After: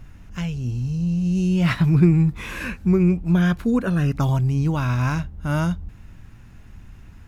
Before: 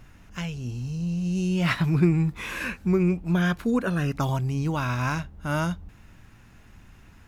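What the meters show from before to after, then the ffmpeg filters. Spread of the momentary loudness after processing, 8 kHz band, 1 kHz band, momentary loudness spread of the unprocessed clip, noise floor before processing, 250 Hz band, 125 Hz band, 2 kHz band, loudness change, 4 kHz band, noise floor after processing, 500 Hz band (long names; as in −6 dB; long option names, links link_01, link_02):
11 LU, can't be measured, +0.5 dB, 10 LU, −52 dBFS, +5.0 dB, +6.0 dB, 0.0 dB, +5.0 dB, 0.0 dB, −44 dBFS, +2.0 dB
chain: -af "lowshelf=frequency=210:gain=9.5"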